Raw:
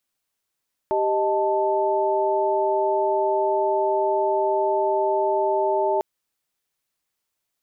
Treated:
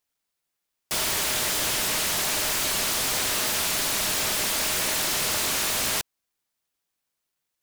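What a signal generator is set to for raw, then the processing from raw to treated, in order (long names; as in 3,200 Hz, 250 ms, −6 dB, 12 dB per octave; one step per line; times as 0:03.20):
held notes G4/D#5/A5 sine, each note −23 dBFS 5.10 s
high-pass filter 720 Hz 24 dB per octave
short delay modulated by noise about 3,400 Hz, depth 0.44 ms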